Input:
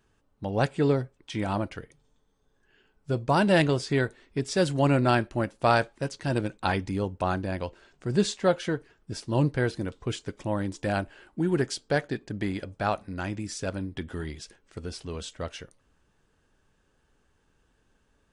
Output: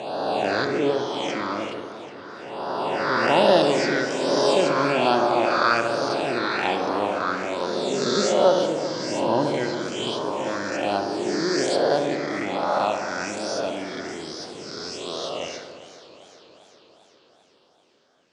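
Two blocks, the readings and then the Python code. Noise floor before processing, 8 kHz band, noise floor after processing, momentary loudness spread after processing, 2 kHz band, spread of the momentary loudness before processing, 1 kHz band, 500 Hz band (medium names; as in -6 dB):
-69 dBFS, +6.5 dB, -58 dBFS, 14 LU, +6.0 dB, 15 LU, +7.5 dB, +7.0 dB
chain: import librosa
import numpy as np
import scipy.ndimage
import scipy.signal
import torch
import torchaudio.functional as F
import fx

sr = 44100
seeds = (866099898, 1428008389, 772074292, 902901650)

y = fx.spec_swells(x, sr, rise_s=2.5)
y = fx.high_shelf(y, sr, hz=6000.0, db=-5.0)
y = fx.phaser_stages(y, sr, stages=6, low_hz=740.0, high_hz=2300.0, hz=1.2, feedback_pct=5)
y = fx.cabinet(y, sr, low_hz=400.0, low_slope=12, high_hz=8100.0, hz=(460.0, 1000.0, 1700.0), db=(-4, 3, -7))
y = fx.echo_filtered(y, sr, ms=69, feedback_pct=73, hz=2400.0, wet_db=-7.0)
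y = fx.echo_warbled(y, sr, ms=397, feedback_pct=65, rate_hz=2.8, cents=130, wet_db=-14.5)
y = y * 10.0 ** (5.5 / 20.0)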